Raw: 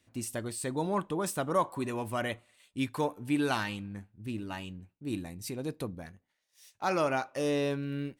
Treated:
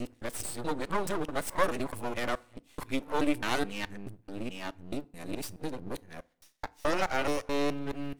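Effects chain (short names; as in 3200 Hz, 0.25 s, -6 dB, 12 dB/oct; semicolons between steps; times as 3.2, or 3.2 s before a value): local time reversal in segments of 0.214 s; half-wave rectifier; FDN reverb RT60 0.51 s, low-frequency decay 1.1×, high-frequency decay 0.65×, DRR 18.5 dB; gain +4.5 dB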